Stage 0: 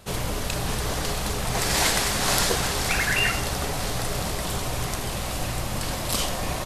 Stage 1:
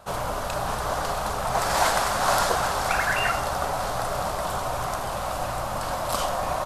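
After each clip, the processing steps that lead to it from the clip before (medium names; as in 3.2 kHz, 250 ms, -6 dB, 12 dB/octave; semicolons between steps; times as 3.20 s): high-order bell 910 Hz +12 dB; trim -5.5 dB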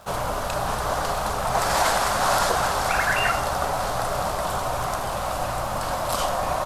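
crackle 230 per s -41 dBFS; loudness maximiser +11 dB; trim -9 dB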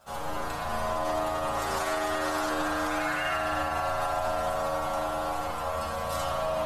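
inharmonic resonator 75 Hz, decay 0.42 s, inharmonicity 0.002; spring tank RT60 3.6 s, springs 36 ms, chirp 40 ms, DRR -5 dB; peak limiter -20 dBFS, peak gain reduction 5 dB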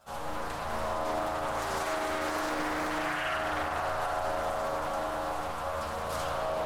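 loudspeaker Doppler distortion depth 0.49 ms; trim -2.5 dB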